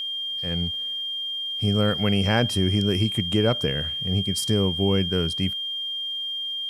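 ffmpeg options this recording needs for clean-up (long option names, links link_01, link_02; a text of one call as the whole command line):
ffmpeg -i in.wav -af "bandreject=frequency=3200:width=30,agate=range=-21dB:threshold=-22dB" out.wav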